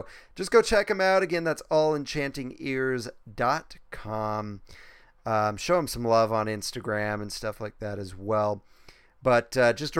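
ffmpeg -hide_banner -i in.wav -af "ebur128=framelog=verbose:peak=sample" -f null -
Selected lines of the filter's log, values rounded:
Integrated loudness:
  I:         -26.7 LUFS
  Threshold: -37.3 LUFS
Loudness range:
  LRA:         5.0 LU
  Threshold: -48.3 LUFS
  LRA low:   -30.7 LUFS
  LRA high:  -25.7 LUFS
Sample peak:
  Peak:       -7.0 dBFS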